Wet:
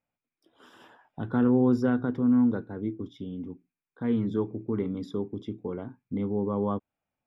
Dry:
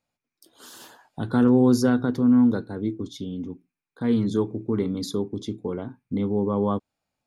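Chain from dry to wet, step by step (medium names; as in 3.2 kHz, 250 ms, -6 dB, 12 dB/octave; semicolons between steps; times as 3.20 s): Savitzky-Golay filter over 25 samples; trim -4.5 dB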